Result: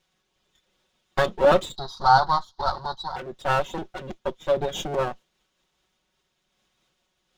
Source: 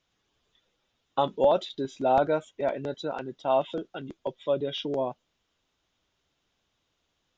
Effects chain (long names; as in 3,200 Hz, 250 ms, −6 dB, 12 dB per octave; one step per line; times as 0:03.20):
lower of the sound and its delayed copy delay 5.4 ms
0:01.76–0:03.16: drawn EQ curve 110 Hz 0 dB, 270 Hz −11 dB, 580 Hz −11 dB, 870 Hz +10 dB, 1,400 Hz +1 dB, 2,500 Hz −25 dB, 4,300 Hz +15 dB, 7,400 Hz −10 dB
amplitude modulation by smooth noise, depth 65%
level +9 dB